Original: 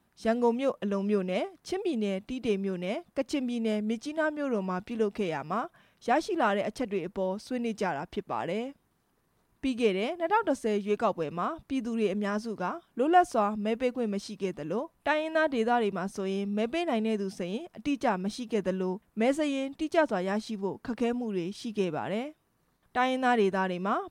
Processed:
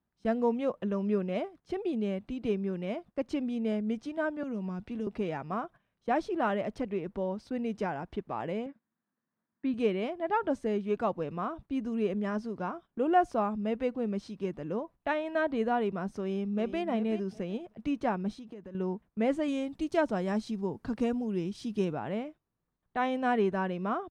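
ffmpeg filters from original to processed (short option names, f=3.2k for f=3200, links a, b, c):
-filter_complex "[0:a]asettb=1/sr,asplit=3[a][b][c];[a]atrim=end=4.434[d];[b]atrim=start=4.43:end=5.07,asetpts=PTS-STARTPTS,afade=t=in:d=0.004:c=qsin,afade=t=out:st=0.636:d=0.004:c=qsin,acrossover=split=290|3000[e][f][g];[f]acompressor=threshold=-40dB:ratio=6:attack=3.2:release=140:knee=2.83:detection=peak[h];[e][h][g]amix=inputs=3:normalize=0[i];[c]atrim=start=5.066[j];[d][i]acrossfade=d=0.004:c1=hsin:c2=qsin[k];[k][j]acrossfade=d=0.004:c1=qsin:c2=hsin,asettb=1/sr,asplit=3[l][m][n];[l]atrim=end=8.664[o];[m]atrim=start=8.66:end=9.74,asetpts=PTS-STARTPTS,afade=t=in:d=0.004:c=qsin,afade=t=out:st=1.076:d=0.004:c=qsin,highpass=220,equalizer=f=220:t=q:w=4:g=9,equalizer=f=410:t=q:w=4:g=-9,equalizer=f=780:t=q:w=4:g=-4,equalizer=f=1.7k:t=q:w=4:g=6,equalizer=f=2.9k:t=q:w=4:g=-9,lowpass=f=4.1k:w=0.5412,lowpass=f=4.1k:w=1.3066[p];[n]atrim=start=9.736[q];[o][p]acrossfade=d=0.004:c1=hsin:c2=qsin[r];[r][q]acrossfade=d=0.004:c1=qsin:c2=hsin,asplit=2[s][t];[t]afade=t=in:st=16.18:d=0.01,afade=t=out:st=16.81:d=0.01,aecho=0:1:380|760|1140:0.266073|0.0665181|0.0166295[u];[s][u]amix=inputs=2:normalize=0,asettb=1/sr,asplit=3[v][w][x];[v]atrim=end=18.314[y];[w]atrim=start=18.31:end=18.75,asetpts=PTS-STARTPTS,afade=t=in:d=0.004:c=qsin,afade=t=out:st=0.436:d=0.004:c=qsin,acompressor=threshold=-39dB:ratio=10:attack=3.2:release=140:knee=1:detection=peak[z];[x]atrim=start=18.746[aa];[y][z]acrossfade=d=0.004:c1=hsin:c2=qsin[ab];[ab][aa]acrossfade=d=0.004:c1=qsin:c2=hsin,asettb=1/sr,asplit=3[ac][ad][ae];[ac]atrim=end=19.484[af];[ad]atrim=start=19.48:end=21.93,asetpts=PTS-STARTPTS,afade=t=in:d=0.004:c=qsin,afade=t=out:st=2.446:d=0.004:c=qsin,bass=f=250:g=3,treble=f=4k:g=9[ag];[ae]atrim=start=21.926[ah];[af][ag]acrossfade=d=0.004:c1=hsin:c2=qsin[ai];[ai][ah]acrossfade=d=0.004:c1=qsin:c2=hsin,lowpass=f=2.3k:p=1,agate=range=-12dB:threshold=-47dB:ratio=16:detection=peak,lowshelf=f=170:g=5.5,volume=-3dB"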